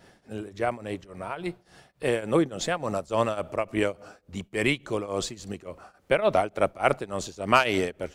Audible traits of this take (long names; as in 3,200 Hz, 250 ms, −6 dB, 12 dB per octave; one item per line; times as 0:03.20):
tremolo triangle 3.5 Hz, depth 90%